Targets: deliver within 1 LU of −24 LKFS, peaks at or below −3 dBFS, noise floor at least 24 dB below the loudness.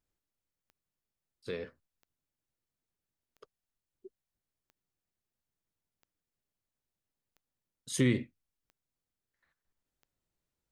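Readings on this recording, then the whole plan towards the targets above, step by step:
number of clicks 8; integrated loudness −33.0 LKFS; sample peak −15.0 dBFS; target loudness −24.0 LKFS
→ click removal
level +9 dB

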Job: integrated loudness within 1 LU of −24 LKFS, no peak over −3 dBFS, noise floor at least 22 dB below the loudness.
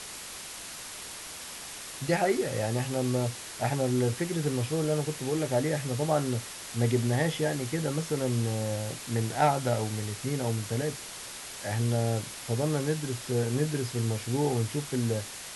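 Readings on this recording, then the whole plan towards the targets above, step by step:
background noise floor −42 dBFS; target noise floor −52 dBFS; integrated loudness −30.0 LKFS; sample peak −11.5 dBFS; target loudness −24.0 LKFS
→ noise reduction from a noise print 10 dB
level +6 dB

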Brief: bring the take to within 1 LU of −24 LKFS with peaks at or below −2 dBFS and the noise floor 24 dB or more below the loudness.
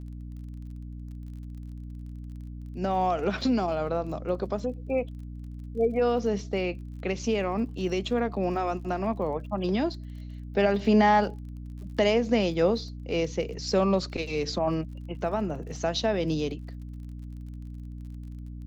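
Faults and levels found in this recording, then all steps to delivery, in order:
crackle rate 35 per second; mains hum 60 Hz; hum harmonics up to 300 Hz; level of the hum −37 dBFS; integrated loudness −27.5 LKFS; sample peak −10.0 dBFS; target loudness −24.0 LKFS
→ click removal
hum removal 60 Hz, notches 5
level +3.5 dB

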